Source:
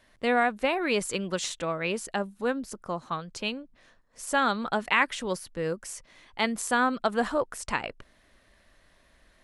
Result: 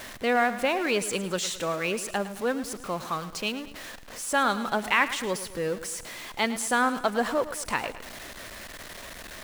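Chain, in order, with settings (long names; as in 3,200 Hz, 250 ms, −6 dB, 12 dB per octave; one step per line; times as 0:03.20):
converter with a step at zero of −35 dBFS
low-shelf EQ 130 Hz −7 dB
feedback echo at a low word length 108 ms, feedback 55%, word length 8 bits, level −13.5 dB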